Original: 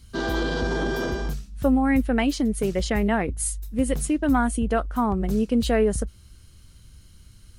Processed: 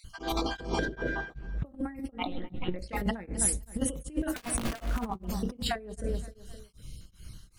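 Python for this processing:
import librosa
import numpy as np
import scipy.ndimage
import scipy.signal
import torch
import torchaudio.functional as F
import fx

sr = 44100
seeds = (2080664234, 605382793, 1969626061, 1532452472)

y = fx.spec_dropout(x, sr, seeds[0], share_pct=36)
y = fx.lowpass(y, sr, hz=1800.0, slope=12, at=(0.85, 1.66))
y = fx.lpc_monotone(y, sr, seeds[1], pitch_hz=180.0, order=16, at=(2.18, 2.79))
y = fx.overflow_wrap(y, sr, gain_db=17.0, at=(4.29, 4.97), fade=0.02)
y = fx.echo_feedback(y, sr, ms=259, feedback_pct=35, wet_db=-19.0)
y = fx.room_shoebox(y, sr, seeds[2], volume_m3=350.0, walls='furnished', distance_m=0.62)
y = fx.over_compress(y, sr, threshold_db=-28.0, ratio=-0.5)
y = y * np.abs(np.cos(np.pi * 2.6 * np.arange(len(y)) / sr))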